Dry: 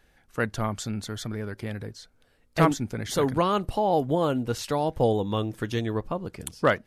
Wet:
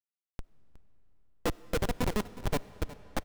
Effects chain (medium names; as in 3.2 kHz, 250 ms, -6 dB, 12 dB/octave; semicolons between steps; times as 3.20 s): gliding tape speed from 79% -> 141%; gate -57 dBFS, range -20 dB; high-pass 260 Hz 12 dB/octave; treble shelf 10 kHz +12 dB; upward compressor, threshold -31 dBFS; tremolo triangle 1.5 Hz, depth 55%; peaking EQ 5.2 kHz -11.5 dB 1.6 oct; small resonant body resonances 480/1000/2700/3900 Hz, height 10 dB, ringing for 55 ms; time stretch by phase-locked vocoder 0.52×; Schmitt trigger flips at -19.5 dBFS; delay 364 ms -17 dB; on a send at -18 dB: reverberation RT60 5.0 s, pre-delay 15 ms; on the sum: trim +2 dB